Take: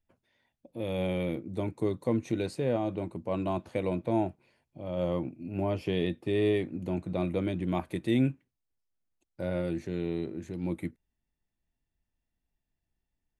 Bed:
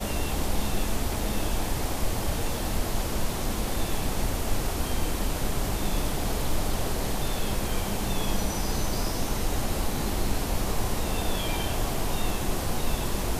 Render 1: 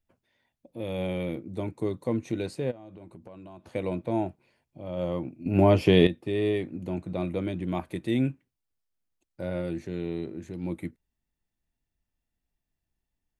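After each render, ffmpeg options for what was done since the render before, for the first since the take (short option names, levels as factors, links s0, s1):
-filter_complex "[0:a]asplit=3[s0][s1][s2];[s0]afade=t=out:st=2.7:d=0.02[s3];[s1]acompressor=threshold=0.00794:ratio=10:attack=3.2:release=140:knee=1:detection=peak,afade=t=in:st=2.7:d=0.02,afade=t=out:st=3.69:d=0.02[s4];[s2]afade=t=in:st=3.69:d=0.02[s5];[s3][s4][s5]amix=inputs=3:normalize=0,asplit=3[s6][s7][s8];[s6]atrim=end=5.462[s9];[s7]atrim=start=5.458:end=6.072,asetpts=PTS-STARTPTS,volume=3.55[s10];[s8]atrim=start=6.068[s11];[s9][s10]acrossfade=d=0.004:c1=hsin:c2=hsin[s12];[s12][s11]acrossfade=d=0.004:c1=hsin:c2=hsin"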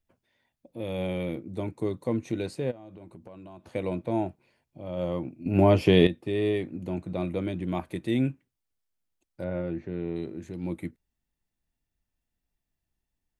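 -filter_complex "[0:a]asettb=1/sr,asplit=3[s0][s1][s2];[s0]atrim=end=9.444[s3];[s1]atrim=start=9.44:end=10.16,asetpts=PTS-STARTPTS,afade=t=in:d=0.004:c=qsin,afade=t=out:st=0.716:d=0.004:c=qsin,lowpass=2100[s4];[s2]atrim=start=10.156[s5];[s3][s4]acrossfade=d=0.004:c1=hsin:c2=qsin[s6];[s6][s5]acrossfade=d=0.004:c1=qsin:c2=hsin"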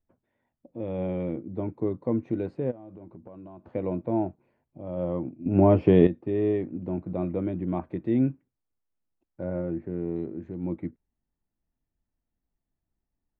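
-af "lowpass=1300,equalizer=f=270:t=o:w=0.95:g=3"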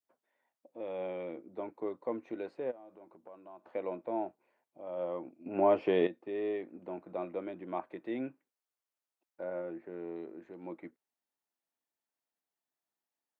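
-af "highpass=600,adynamicequalizer=threshold=0.00501:dfrequency=1000:dqfactor=0.72:tfrequency=1000:tqfactor=0.72:attack=5:release=100:ratio=0.375:range=2:mode=cutabove:tftype=bell"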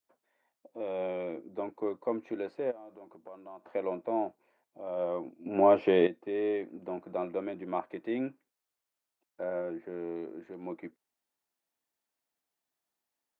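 -af "volume=1.58"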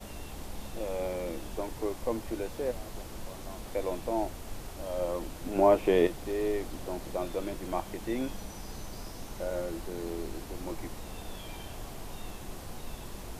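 -filter_complex "[1:a]volume=0.2[s0];[0:a][s0]amix=inputs=2:normalize=0"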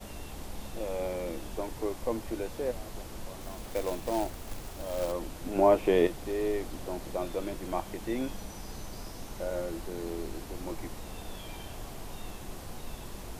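-filter_complex "[0:a]asettb=1/sr,asplit=3[s0][s1][s2];[s0]atrim=end=3.414[s3];[s1]atrim=start=3.41:end=5.12,asetpts=PTS-STARTPTS,afade=t=in:d=0.004:c=qsin,afade=t=out:st=1.706:d=0.004:c=qsin,acrusher=bits=3:mode=log:mix=0:aa=0.000001[s4];[s2]atrim=start=5.116[s5];[s3][s4]acrossfade=d=0.004:c1=hsin:c2=qsin[s6];[s6][s5]acrossfade=d=0.004:c1=qsin:c2=hsin"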